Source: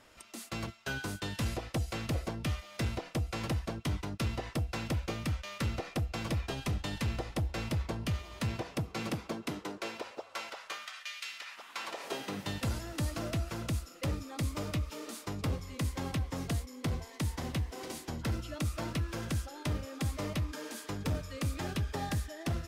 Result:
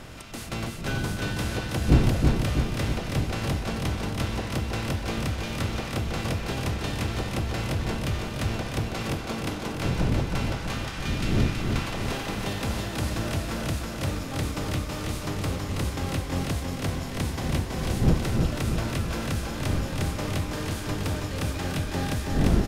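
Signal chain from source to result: per-bin compression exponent 0.6; wind noise 170 Hz -33 dBFS; feedback echo 0.325 s, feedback 60%, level -4 dB; gain +1 dB

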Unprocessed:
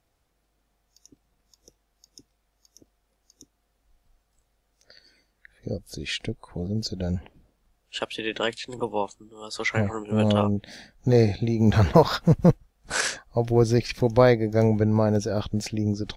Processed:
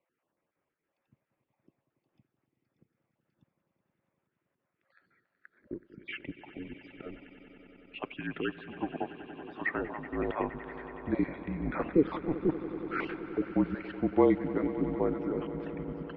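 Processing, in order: random spectral dropouts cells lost 33%; swelling echo 94 ms, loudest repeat 5, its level -17 dB; mistuned SSB -160 Hz 330–2700 Hz; gain -5 dB

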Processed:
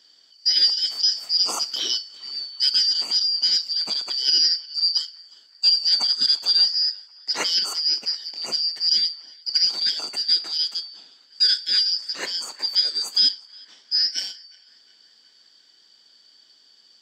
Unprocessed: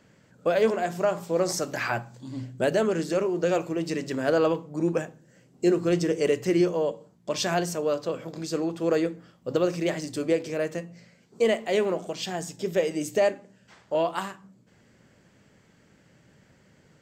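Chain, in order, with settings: four-band scrambler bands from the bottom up 4321; HPF 190 Hz 24 dB/oct; high shelf 11000 Hz -5.5 dB; narrowing echo 0.36 s, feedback 67%, band-pass 1600 Hz, level -20.5 dB; gain +4 dB

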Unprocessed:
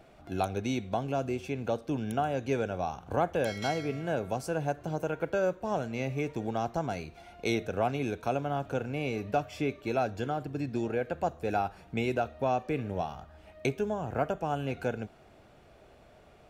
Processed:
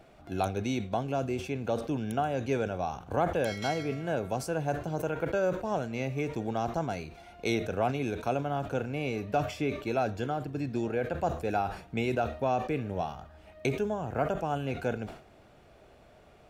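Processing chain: sustainer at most 110 dB/s

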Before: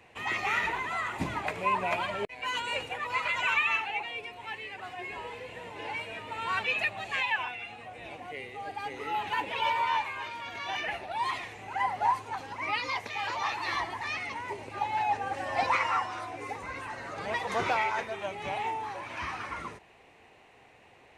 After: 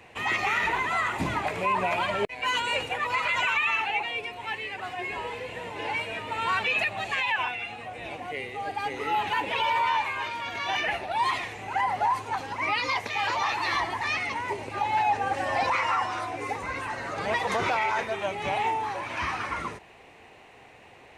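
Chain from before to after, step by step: limiter -23 dBFS, peak gain reduction 7 dB; gain +6 dB

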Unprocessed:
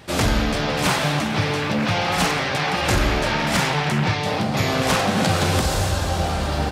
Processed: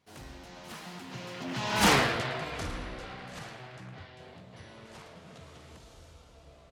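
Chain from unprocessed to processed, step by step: Doppler pass-by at 1.92, 59 m/s, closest 5 m; feedback echo 0.111 s, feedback 32%, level -13 dB

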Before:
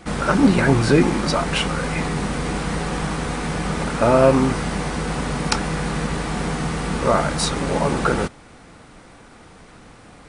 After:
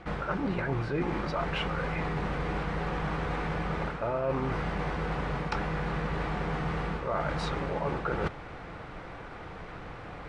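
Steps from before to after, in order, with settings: LPF 2600 Hz 12 dB/oct; bell 240 Hz -9 dB 0.53 oct; reverse; compressor 6:1, threshold -33 dBFS, peak gain reduction 21 dB; reverse; gain +4 dB

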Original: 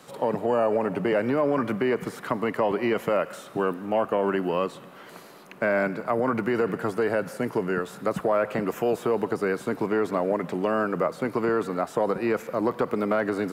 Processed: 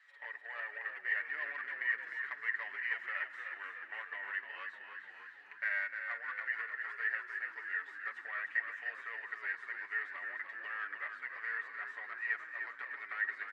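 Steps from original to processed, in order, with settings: comb 6.9 ms, depth 75%; added harmonics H 7 -27 dB, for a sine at -8.5 dBFS; ladder band-pass 1900 Hz, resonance 90%; on a send: frequency-shifting echo 0.303 s, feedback 62%, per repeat -45 Hz, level -7 dB; on the sum: gain -3 dB

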